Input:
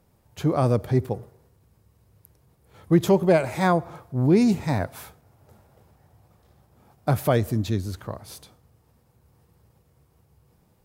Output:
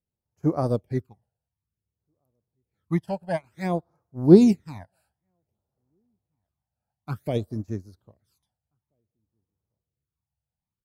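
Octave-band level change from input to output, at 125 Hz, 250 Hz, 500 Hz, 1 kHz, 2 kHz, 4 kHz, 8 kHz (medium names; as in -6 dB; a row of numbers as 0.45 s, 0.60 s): -4.5 dB, +0.5 dB, -2.0 dB, -8.0 dB, -9.5 dB, -7.5 dB, no reading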